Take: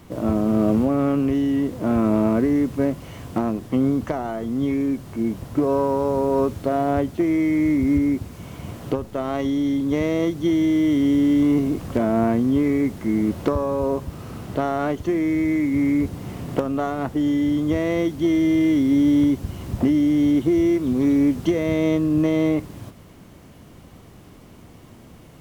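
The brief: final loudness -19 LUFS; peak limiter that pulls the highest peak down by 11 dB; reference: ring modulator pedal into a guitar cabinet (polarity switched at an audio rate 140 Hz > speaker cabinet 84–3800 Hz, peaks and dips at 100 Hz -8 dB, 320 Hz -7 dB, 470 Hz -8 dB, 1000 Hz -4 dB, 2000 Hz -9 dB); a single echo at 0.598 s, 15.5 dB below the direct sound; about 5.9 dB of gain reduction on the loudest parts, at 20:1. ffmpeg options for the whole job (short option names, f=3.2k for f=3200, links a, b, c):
-af "acompressor=threshold=-20dB:ratio=20,alimiter=limit=-22dB:level=0:latency=1,aecho=1:1:598:0.168,aeval=exprs='val(0)*sgn(sin(2*PI*140*n/s))':c=same,highpass=84,equalizer=f=100:t=q:w=4:g=-8,equalizer=f=320:t=q:w=4:g=-7,equalizer=f=470:t=q:w=4:g=-8,equalizer=f=1k:t=q:w=4:g=-4,equalizer=f=2k:t=q:w=4:g=-9,lowpass=f=3.8k:w=0.5412,lowpass=f=3.8k:w=1.3066,volume=14dB"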